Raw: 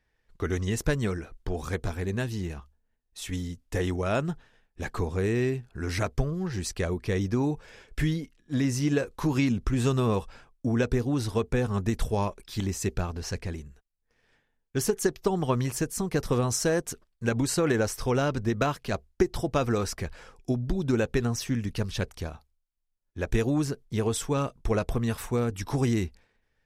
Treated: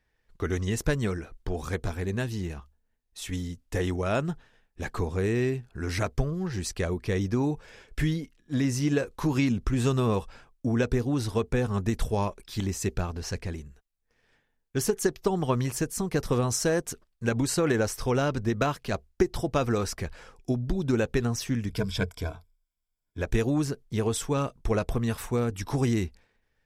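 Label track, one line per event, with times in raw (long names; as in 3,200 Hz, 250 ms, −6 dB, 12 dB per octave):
21.690000	23.220000	EQ curve with evenly spaced ripples crests per octave 1.7, crest to trough 12 dB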